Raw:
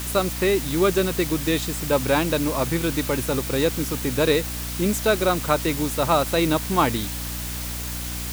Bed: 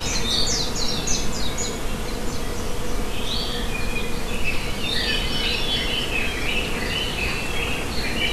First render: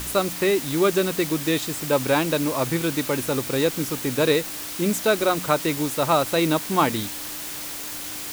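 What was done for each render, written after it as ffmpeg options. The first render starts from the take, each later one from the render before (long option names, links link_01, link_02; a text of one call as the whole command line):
ffmpeg -i in.wav -af "bandreject=frequency=60:width_type=h:width=4,bandreject=frequency=120:width_type=h:width=4,bandreject=frequency=180:width_type=h:width=4,bandreject=frequency=240:width_type=h:width=4" out.wav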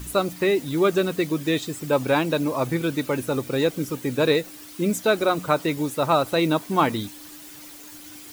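ffmpeg -i in.wav -af "afftdn=noise_reduction=12:noise_floor=-33" out.wav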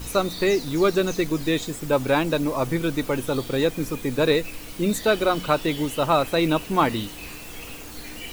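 ffmpeg -i in.wav -i bed.wav -filter_complex "[1:a]volume=-15dB[link_01];[0:a][link_01]amix=inputs=2:normalize=0" out.wav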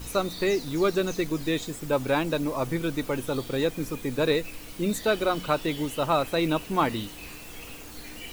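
ffmpeg -i in.wav -af "volume=-4dB" out.wav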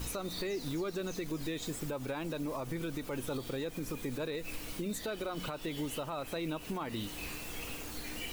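ffmpeg -i in.wav -af "acompressor=threshold=-26dB:ratio=6,alimiter=level_in=4.5dB:limit=-24dB:level=0:latency=1:release=154,volume=-4.5dB" out.wav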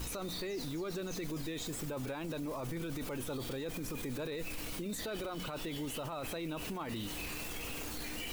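ffmpeg -i in.wav -af "acontrast=75,alimiter=level_in=8dB:limit=-24dB:level=0:latency=1:release=17,volume=-8dB" out.wav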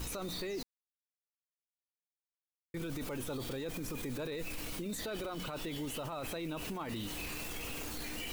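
ffmpeg -i in.wav -filter_complex "[0:a]asplit=3[link_01][link_02][link_03];[link_01]atrim=end=0.63,asetpts=PTS-STARTPTS,afade=type=out:start_time=0.626:duration=0.004:curve=hsin[link_04];[link_02]atrim=start=0.63:end=2.74,asetpts=PTS-STARTPTS,volume=0[link_05];[link_03]atrim=start=2.74,asetpts=PTS-STARTPTS,afade=type=in:duration=0.004:curve=hsin[link_06];[link_04][link_05][link_06]concat=n=3:v=0:a=1" out.wav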